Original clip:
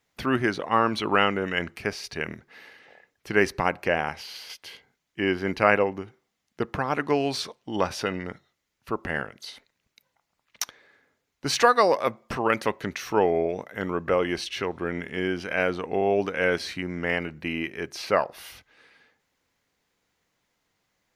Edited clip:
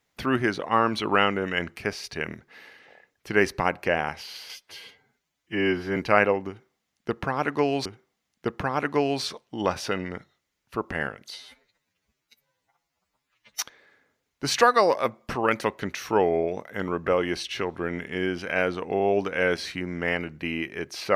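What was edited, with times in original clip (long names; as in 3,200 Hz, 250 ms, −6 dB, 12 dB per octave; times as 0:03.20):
0:04.51–0:05.48: time-stretch 1.5×
0:06.00–0:07.37: repeat, 2 plays
0:09.49–0:10.62: time-stretch 2×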